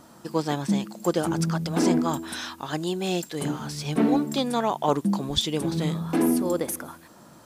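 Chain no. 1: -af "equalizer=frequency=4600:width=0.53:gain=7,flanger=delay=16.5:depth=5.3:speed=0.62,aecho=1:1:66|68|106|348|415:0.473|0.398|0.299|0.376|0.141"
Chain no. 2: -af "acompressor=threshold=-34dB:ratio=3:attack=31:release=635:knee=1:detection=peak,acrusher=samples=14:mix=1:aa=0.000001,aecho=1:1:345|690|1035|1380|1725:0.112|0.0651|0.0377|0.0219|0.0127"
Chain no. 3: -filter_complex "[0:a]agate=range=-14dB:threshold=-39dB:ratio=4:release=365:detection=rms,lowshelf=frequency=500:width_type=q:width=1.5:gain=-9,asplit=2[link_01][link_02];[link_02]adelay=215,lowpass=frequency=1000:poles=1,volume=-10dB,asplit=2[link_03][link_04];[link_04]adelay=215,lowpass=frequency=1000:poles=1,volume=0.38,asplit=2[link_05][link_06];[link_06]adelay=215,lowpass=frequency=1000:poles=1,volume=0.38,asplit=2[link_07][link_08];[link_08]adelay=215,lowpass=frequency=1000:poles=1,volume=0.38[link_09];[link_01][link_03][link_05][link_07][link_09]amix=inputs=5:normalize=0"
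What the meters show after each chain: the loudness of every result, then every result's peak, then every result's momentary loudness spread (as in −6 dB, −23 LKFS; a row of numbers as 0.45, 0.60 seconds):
−25.5, −35.0, −29.5 LKFS; −7.0, −19.5, −9.0 dBFS; 7, 4, 8 LU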